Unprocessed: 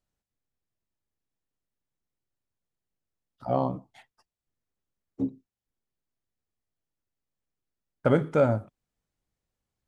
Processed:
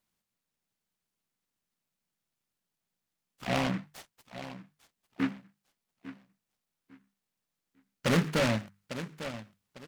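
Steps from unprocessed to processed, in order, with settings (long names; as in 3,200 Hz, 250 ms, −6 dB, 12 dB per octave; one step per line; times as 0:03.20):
tilt shelving filter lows −9 dB, about 910 Hz
repeating echo 850 ms, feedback 26%, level −15.5 dB
soft clipping −23 dBFS, distortion −10 dB
parametric band 190 Hz +14.5 dB 1 octave
mains-hum notches 50/100/150/200 Hz
short delay modulated by noise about 1,500 Hz, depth 0.17 ms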